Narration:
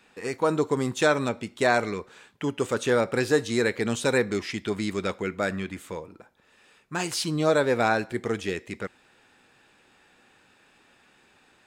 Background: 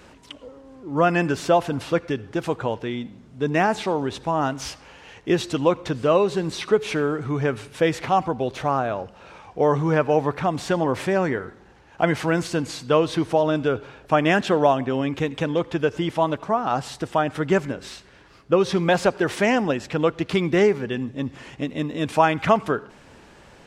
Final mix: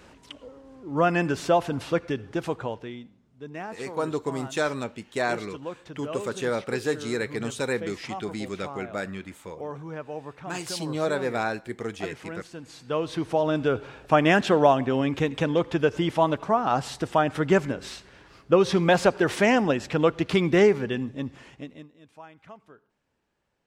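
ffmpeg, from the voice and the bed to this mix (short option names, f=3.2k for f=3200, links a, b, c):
-filter_complex "[0:a]adelay=3550,volume=-4.5dB[a];[1:a]volume=13dB,afade=t=out:st=2.37:d=0.8:silence=0.211349,afade=t=in:st=12.62:d=1.27:silence=0.158489,afade=t=out:st=20.82:d=1.09:silence=0.0398107[b];[a][b]amix=inputs=2:normalize=0"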